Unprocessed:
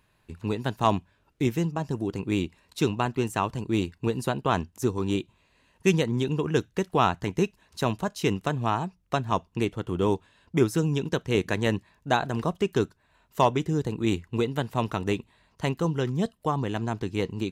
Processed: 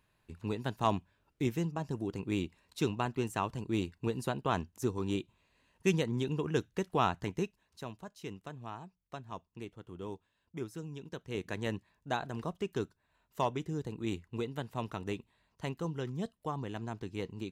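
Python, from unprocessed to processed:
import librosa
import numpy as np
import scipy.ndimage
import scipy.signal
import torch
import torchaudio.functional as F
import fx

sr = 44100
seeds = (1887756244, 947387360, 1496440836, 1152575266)

y = fx.gain(x, sr, db=fx.line((7.26, -7.0), (7.91, -18.0), (11.0, -18.0), (11.6, -10.5)))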